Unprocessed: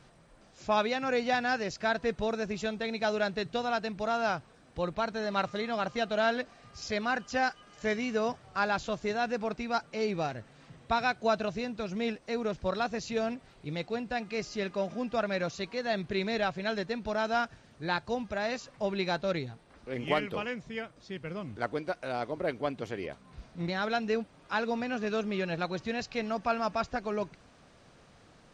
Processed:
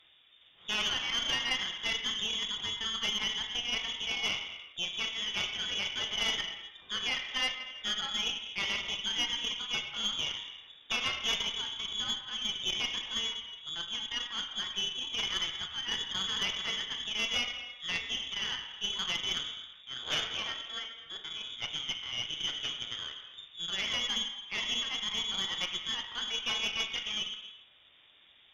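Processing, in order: one-sided wavefolder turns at -23.5 dBFS; gated-style reverb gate 440 ms falling, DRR 2 dB; frequency inversion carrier 3.6 kHz; valve stage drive 20 dB, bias 0.8

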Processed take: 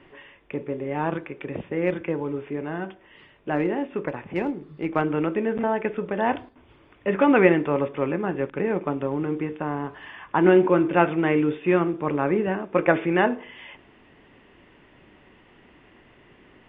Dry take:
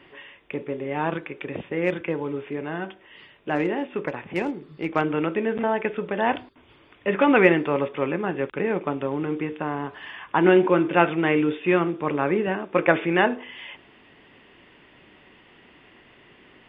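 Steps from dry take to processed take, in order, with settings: low-pass 1.9 kHz 6 dB/octave; bass shelf 88 Hz +7 dB; on a send: reverberation RT60 0.55 s, pre-delay 3 ms, DRR 22 dB

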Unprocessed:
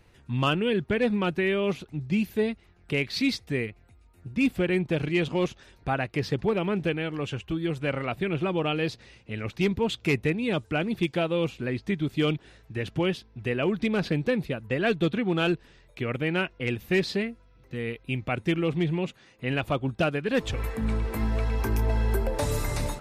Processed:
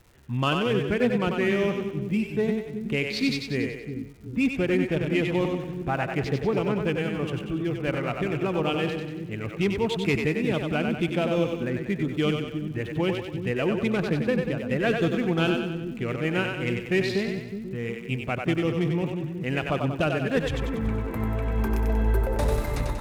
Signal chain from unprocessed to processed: local Wiener filter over 9 samples; two-band feedback delay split 340 Hz, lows 366 ms, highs 94 ms, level -4.5 dB; crackle 230 per s -46 dBFS

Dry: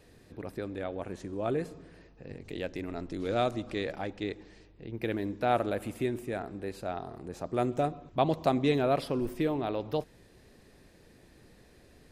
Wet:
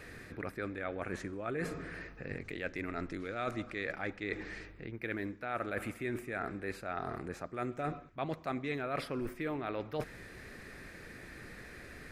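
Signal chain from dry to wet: high-order bell 1.7 kHz +10.5 dB 1.2 oct; reverse; compression 6:1, threshold -41 dBFS, peak gain reduction 21 dB; reverse; trim +6 dB

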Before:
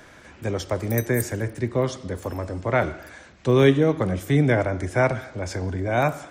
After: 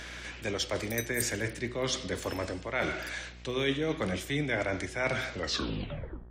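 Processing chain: tape stop on the ending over 1.00 s; frequency weighting D; reverse; compression 4:1, threshold -29 dBFS, peak gain reduction 15.5 dB; reverse; mains buzz 60 Hz, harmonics 31, -49 dBFS -8 dB/octave; de-hum 124.2 Hz, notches 36

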